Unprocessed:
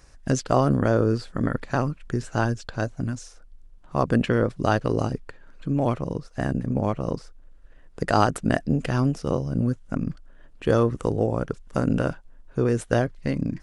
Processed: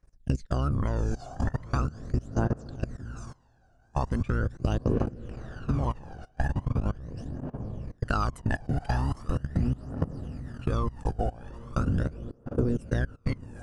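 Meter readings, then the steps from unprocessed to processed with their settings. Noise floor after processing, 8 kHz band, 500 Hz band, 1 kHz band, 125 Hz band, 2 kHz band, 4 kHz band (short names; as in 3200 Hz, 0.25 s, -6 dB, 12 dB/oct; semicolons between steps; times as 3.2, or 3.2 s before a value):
-62 dBFS, under -10 dB, -11.0 dB, -7.5 dB, -3.0 dB, -7.5 dB, -9.0 dB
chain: octaver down 1 oct, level -2 dB; diffused feedback echo 0.818 s, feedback 58%, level -8 dB; gate -28 dBFS, range -16 dB; level quantiser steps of 22 dB; phaser 0.4 Hz, delay 1.4 ms, feedback 71%; compressor 4:1, threshold -24 dBFS, peak gain reduction 13 dB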